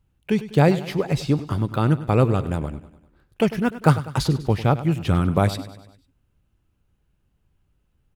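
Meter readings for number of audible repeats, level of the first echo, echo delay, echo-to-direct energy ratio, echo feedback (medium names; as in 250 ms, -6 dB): 4, -15.0 dB, 99 ms, -13.5 dB, 53%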